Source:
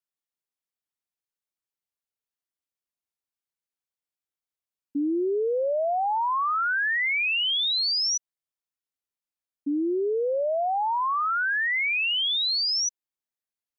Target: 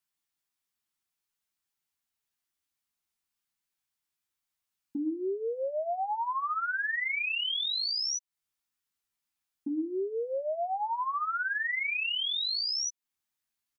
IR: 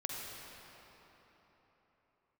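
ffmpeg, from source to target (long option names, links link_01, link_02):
-filter_complex "[0:a]equalizer=frequency=510:width_type=o:width=0.7:gain=-11.5,bandreject=frequency=50:width_type=h:width=6,bandreject=frequency=100:width_type=h:width=6,bandreject=frequency=150:width_type=h:width=6,bandreject=frequency=200:width_type=h:width=6,bandreject=frequency=250:width_type=h:width=6,bandreject=frequency=300:width_type=h:width=6,asplit=2[link_01][link_02];[link_02]alimiter=level_in=9dB:limit=-24dB:level=0:latency=1:release=362,volume=-9dB,volume=-1.5dB[link_03];[link_01][link_03]amix=inputs=2:normalize=0,acompressor=threshold=-32dB:ratio=6,asplit=2[link_04][link_05];[link_05]adelay=13,volume=-5dB[link_06];[link_04][link_06]amix=inputs=2:normalize=0"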